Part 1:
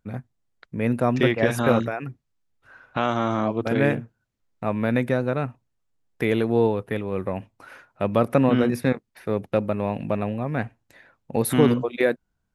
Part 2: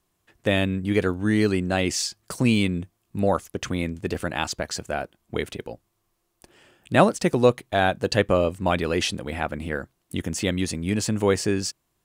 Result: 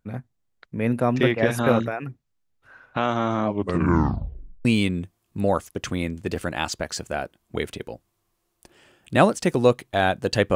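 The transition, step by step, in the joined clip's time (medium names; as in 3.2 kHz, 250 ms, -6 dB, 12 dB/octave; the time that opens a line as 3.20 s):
part 1
3.46 s: tape stop 1.19 s
4.65 s: go over to part 2 from 2.44 s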